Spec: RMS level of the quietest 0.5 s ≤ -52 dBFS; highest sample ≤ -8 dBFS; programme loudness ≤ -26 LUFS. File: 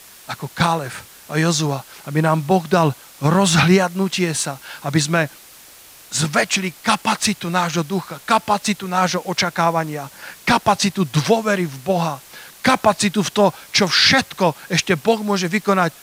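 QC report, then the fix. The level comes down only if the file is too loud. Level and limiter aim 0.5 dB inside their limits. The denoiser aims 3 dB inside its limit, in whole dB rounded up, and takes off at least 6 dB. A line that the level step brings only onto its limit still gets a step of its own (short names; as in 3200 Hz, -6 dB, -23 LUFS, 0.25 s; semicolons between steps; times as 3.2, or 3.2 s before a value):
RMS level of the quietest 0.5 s -44 dBFS: fail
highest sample -3.0 dBFS: fail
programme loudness -18.5 LUFS: fail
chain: denoiser 6 dB, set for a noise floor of -44 dBFS; gain -8 dB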